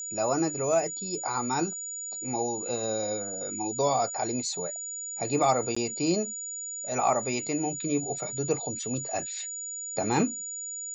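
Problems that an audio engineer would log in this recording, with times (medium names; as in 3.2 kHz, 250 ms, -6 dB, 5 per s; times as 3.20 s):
whine 6.9 kHz -34 dBFS
5.75–5.76 s: dropout 15 ms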